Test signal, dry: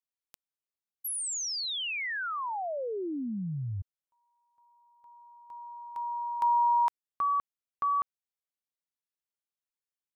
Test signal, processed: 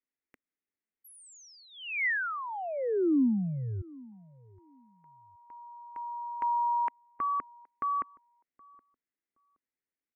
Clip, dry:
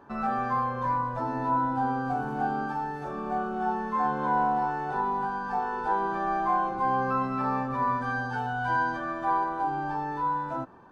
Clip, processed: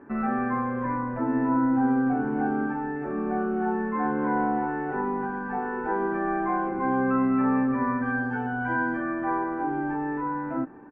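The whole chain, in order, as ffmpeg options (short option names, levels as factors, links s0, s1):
-filter_complex "[0:a]firequalizer=gain_entry='entry(150,0);entry(260,11);entry(620,-1);entry(990,-4);entry(2000,7);entry(3800,-23);entry(5800,-20)':delay=0.05:min_phase=1,asplit=2[s0][s1];[s1]adelay=771,lowpass=f=850:p=1,volume=0.0794,asplit=2[s2][s3];[s3]adelay=771,lowpass=f=850:p=1,volume=0.24[s4];[s0][s2][s4]amix=inputs=3:normalize=0"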